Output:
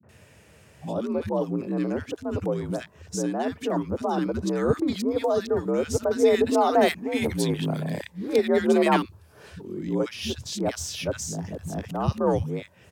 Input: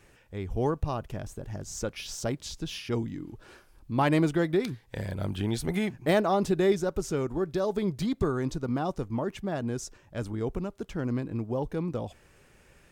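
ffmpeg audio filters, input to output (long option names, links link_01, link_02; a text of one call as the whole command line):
ffmpeg -i in.wav -filter_complex "[0:a]areverse,acrossover=split=200|1300[link_01][link_02][link_03];[link_02]adelay=30[link_04];[link_03]adelay=90[link_05];[link_01][link_04][link_05]amix=inputs=3:normalize=0,afreqshift=61,volume=5.5dB" out.wav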